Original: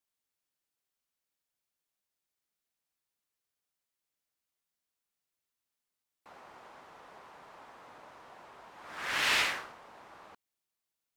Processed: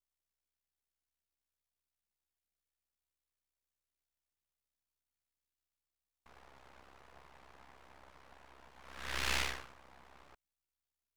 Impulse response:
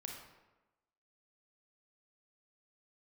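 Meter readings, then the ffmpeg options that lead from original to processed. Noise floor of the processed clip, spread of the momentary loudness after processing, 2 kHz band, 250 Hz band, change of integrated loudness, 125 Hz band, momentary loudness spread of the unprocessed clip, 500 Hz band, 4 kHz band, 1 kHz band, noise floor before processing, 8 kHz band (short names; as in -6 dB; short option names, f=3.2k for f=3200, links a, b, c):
under -85 dBFS, 20 LU, -8.5 dB, -3.0 dB, -7.5 dB, +6.0 dB, 20 LU, -5.5 dB, -7.5 dB, -7.5 dB, under -85 dBFS, -4.5 dB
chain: -af "aeval=exprs='val(0)*sin(2*PI*33*n/s)':c=same,aeval=exprs='max(val(0),0)':c=same"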